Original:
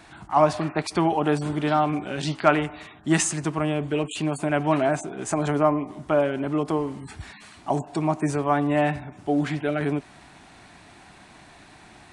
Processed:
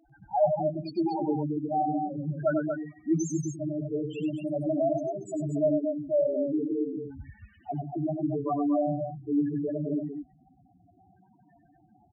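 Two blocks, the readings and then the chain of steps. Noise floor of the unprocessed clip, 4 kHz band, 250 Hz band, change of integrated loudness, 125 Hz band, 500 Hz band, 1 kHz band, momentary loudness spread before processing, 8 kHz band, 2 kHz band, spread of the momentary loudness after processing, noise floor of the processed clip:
-50 dBFS, under -15 dB, -3.5 dB, -5.0 dB, -6.5 dB, -3.5 dB, -8.0 dB, 8 LU, -13.5 dB, -18.5 dB, 9 LU, -62 dBFS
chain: loudest bins only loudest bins 2; on a send: loudspeakers at several distances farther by 33 m -6 dB, 80 m -6 dB; on the sum: trim -2 dB

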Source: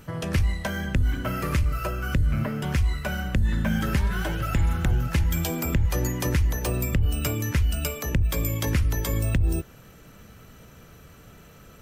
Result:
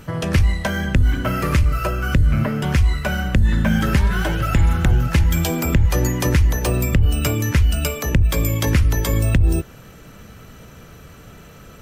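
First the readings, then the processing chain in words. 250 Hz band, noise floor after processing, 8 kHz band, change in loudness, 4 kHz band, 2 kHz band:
+7.0 dB, -43 dBFS, +6.0 dB, +7.0 dB, +6.5 dB, +7.0 dB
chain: treble shelf 11 kHz -5 dB; trim +7 dB

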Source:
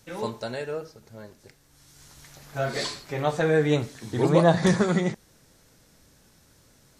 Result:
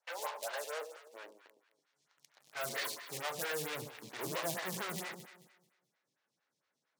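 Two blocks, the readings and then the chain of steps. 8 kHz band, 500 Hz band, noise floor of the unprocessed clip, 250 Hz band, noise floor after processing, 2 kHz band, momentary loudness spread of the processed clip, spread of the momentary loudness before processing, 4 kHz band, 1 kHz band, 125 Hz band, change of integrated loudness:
-3.0 dB, -17.5 dB, -59 dBFS, -24.0 dB, under -85 dBFS, -8.5 dB, 15 LU, 14 LU, -7.5 dB, -12.0 dB, -24.5 dB, -14.5 dB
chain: low-pass 2.2 kHz 12 dB/octave; in parallel at -4 dB: fuzz box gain 36 dB, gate -44 dBFS; on the sum: differentiator; high-pass sweep 650 Hz -> 130 Hz, 0.64–2.06 s; on a send: echo whose repeats swap between lows and highs 109 ms, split 1.1 kHz, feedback 53%, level -7.5 dB; on the sum: lamp-driven phase shifter 4.4 Hz; trim -2.5 dB

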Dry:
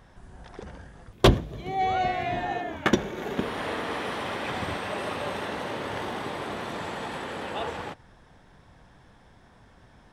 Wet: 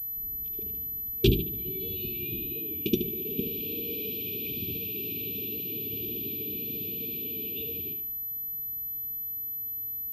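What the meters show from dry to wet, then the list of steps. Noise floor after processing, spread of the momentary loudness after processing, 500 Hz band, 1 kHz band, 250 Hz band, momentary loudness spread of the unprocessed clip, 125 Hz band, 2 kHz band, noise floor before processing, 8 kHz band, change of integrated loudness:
-35 dBFS, 4 LU, -5.5 dB, under -40 dB, -2.5 dB, 16 LU, -3.0 dB, -12.0 dB, -56 dBFS, no reading, -1.5 dB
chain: bucket-brigade echo 73 ms, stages 2048, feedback 38%, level -8 dB; FFT band-reject 470–2300 Hz; class-D stage that switches slowly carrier 12 kHz; trim -3.5 dB

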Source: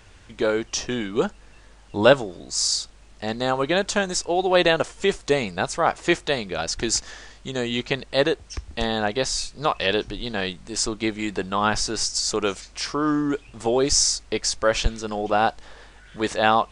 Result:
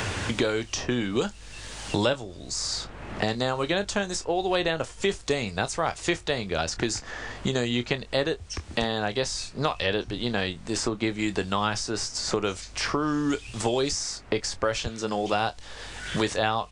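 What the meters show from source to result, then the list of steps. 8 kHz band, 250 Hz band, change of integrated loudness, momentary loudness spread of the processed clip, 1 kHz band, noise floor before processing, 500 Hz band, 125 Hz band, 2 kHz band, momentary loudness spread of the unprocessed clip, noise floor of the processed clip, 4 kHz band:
-7.0 dB, -2.5 dB, -4.5 dB, 6 LU, -5.5 dB, -49 dBFS, -5.0 dB, +0.5 dB, -3.5 dB, 10 LU, -45 dBFS, -4.0 dB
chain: peaking EQ 94 Hz +9.5 dB 0.68 oct; doubling 25 ms -12.5 dB; three bands compressed up and down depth 100%; trim -5 dB

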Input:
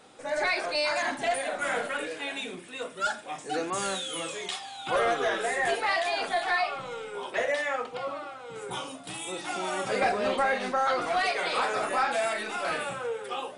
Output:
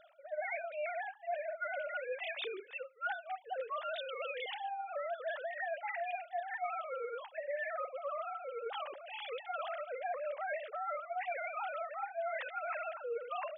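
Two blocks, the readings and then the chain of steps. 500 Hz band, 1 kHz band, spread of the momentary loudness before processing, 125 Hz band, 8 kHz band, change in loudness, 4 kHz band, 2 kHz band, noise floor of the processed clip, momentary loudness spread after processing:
-9.0 dB, -10.0 dB, 10 LU, under -40 dB, under -40 dB, -10.5 dB, -15.0 dB, -11.5 dB, -56 dBFS, 3 LU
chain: formants replaced by sine waves; reverse; compression 12:1, threshold -39 dBFS, peak gain reduction 25 dB; reverse; trim +3 dB

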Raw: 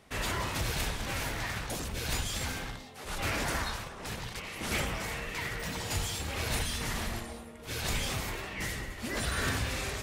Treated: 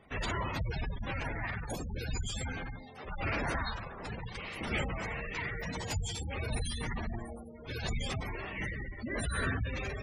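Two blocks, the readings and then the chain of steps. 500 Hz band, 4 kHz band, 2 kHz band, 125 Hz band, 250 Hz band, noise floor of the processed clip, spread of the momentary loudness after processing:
-1.5 dB, -7.0 dB, -2.5 dB, 0.0 dB, -1.0 dB, -47 dBFS, 8 LU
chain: spectral gate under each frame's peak -15 dB strong

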